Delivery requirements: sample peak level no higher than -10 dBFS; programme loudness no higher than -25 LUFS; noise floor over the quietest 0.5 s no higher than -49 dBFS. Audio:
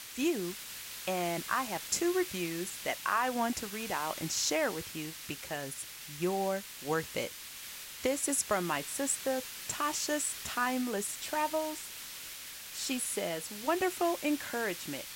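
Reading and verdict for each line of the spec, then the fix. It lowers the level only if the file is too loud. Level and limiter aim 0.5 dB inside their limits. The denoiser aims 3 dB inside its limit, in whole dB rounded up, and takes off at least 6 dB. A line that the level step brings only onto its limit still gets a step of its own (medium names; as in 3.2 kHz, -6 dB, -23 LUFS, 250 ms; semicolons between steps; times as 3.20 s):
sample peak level -16.0 dBFS: pass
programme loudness -33.5 LUFS: pass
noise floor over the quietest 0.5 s -46 dBFS: fail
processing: noise reduction 6 dB, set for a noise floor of -46 dBFS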